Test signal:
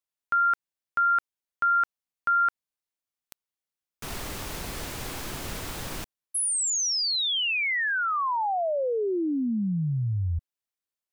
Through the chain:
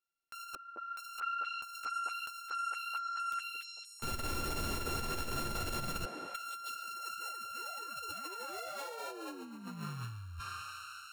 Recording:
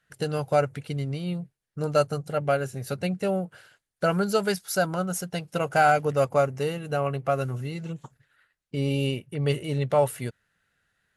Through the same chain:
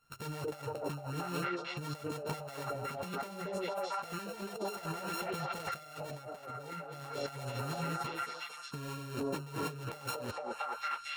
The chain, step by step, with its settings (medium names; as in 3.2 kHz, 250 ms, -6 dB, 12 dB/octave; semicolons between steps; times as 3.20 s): sorted samples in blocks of 32 samples; chorus voices 6, 1.3 Hz, delay 11 ms, depth 3 ms; on a send: repeats whose band climbs or falls 225 ms, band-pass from 400 Hz, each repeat 0.7 oct, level -0.5 dB; on the sum: compressor with a negative ratio -37 dBFS, ratio -1; trim -4 dB